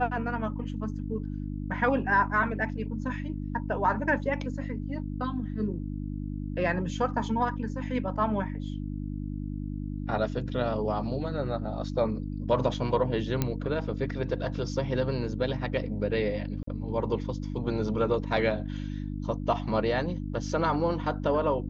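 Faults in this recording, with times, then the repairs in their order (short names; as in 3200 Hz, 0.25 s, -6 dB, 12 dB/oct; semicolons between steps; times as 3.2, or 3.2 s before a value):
hum 50 Hz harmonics 6 -34 dBFS
13.42 pop -12 dBFS
16.63–16.67 gap 44 ms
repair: de-click; de-hum 50 Hz, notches 6; interpolate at 16.63, 44 ms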